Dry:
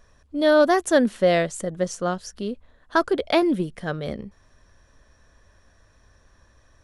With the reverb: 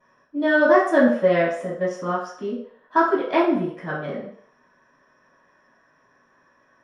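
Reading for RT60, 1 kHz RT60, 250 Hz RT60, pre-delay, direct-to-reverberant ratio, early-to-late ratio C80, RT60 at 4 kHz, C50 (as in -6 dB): 0.60 s, 0.60 s, 0.40 s, 3 ms, -16.5 dB, 8.5 dB, 0.55 s, 4.5 dB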